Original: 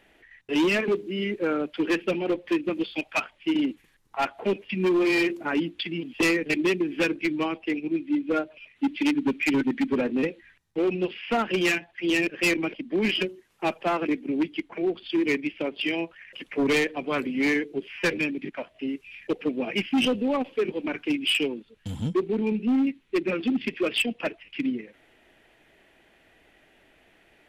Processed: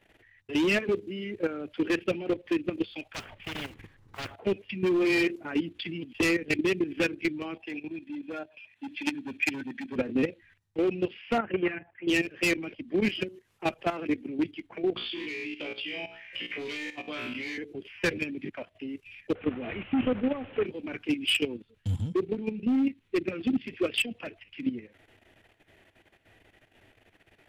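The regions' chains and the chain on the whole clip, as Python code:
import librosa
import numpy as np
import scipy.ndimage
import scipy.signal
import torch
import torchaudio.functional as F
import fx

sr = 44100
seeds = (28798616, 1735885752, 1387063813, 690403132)

y = fx.chain(x, sr, fx.block_float(bits=5),
    fx.lowpass(hz=1200.0, slope=6),
    fx.spectral_comp(ratio=4.0), at=(3.14, 4.36))
y = fx.chain(y, sr, fx.highpass(hz=330.0, slope=6),
    fx.comb(ms=1.2, depth=0.4), at=(7.6, 9.96))
y = fx.chain(y, sr, fx.lowpass(hz=2100.0, slope=24),
    fx.low_shelf(hz=89.0, db=-8.0), at=(11.38, 12.08))
y = fx.chain(y, sr, fx.peak_eq(hz=3500.0, db=11.0, octaves=2.1),
    fx.comb_fb(f0_hz=60.0, decay_s=0.41, harmonics='all', damping=0.0, mix_pct=100),
    fx.band_squash(depth_pct=100), at=(14.96, 17.58))
y = fx.chain(y, sr, fx.delta_mod(bps=16000, step_db=-30.0),
    fx.air_absorb(metres=57.0), at=(19.35, 20.66))
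y = fx.dynamic_eq(y, sr, hz=960.0, q=3.3, threshold_db=-44.0, ratio=4.0, max_db=-4)
y = fx.level_steps(y, sr, step_db=12)
y = fx.peak_eq(y, sr, hz=100.0, db=12.5, octaves=0.62)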